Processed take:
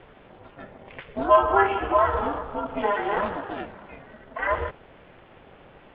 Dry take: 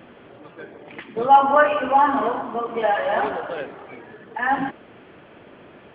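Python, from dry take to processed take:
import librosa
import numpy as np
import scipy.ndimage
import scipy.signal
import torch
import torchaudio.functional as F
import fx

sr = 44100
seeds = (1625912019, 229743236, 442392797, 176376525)

y = x * np.sin(2.0 * np.pi * 200.0 * np.arange(len(x)) / sr)
y = y * 10.0 ** (-1.0 / 20.0)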